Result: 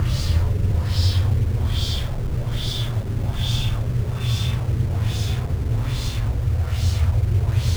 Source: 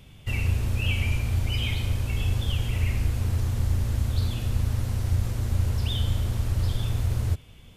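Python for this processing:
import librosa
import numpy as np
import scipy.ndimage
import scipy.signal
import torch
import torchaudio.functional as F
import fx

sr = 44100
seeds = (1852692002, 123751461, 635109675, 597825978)

p1 = fx.highpass(x, sr, hz=48.0, slope=6)
p2 = fx.bass_treble(p1, sr, bass_db=1, treble_db=14)
p3 = fx.paulstretch(p2, sr, seeds[0], factor=15.0, window_s=0.1, from_s=6.6)
p4 = fx.filter_lfo_lowpass(p3, sr, shape='sine', hz=1.2, low_hz=390.0, high_hz=4700.0, q=1.5)
p5 = fx.add_hum(p4, sr, base_hz=50, snr_db=34)
p6 = fx.quant_dither(p5, sr, seeds[1], bits=6, dither='none')
y = p5 + (p6 * librosa.db_to_amplitude(-4.0))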